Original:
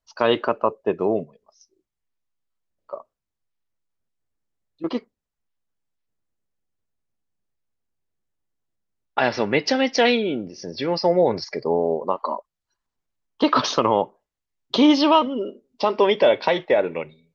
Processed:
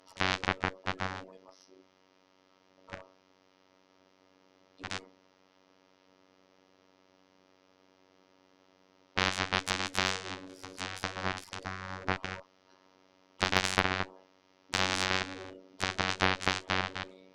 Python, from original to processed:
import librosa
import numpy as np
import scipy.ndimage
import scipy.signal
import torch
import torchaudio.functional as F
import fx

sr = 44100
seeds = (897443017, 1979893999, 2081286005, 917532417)

y = fx.bin_compress(x, sr, power=0.4)
y = fx.robotise(y, sr, hz=93.8)
y = fx.cheby_harmonics(y, sr, harmonics=(3, 6, 7), levels_db=(-11, -35, -26), full_scale_db=6.0)
y = y * 10.0 ** (-8.5 / 20.0)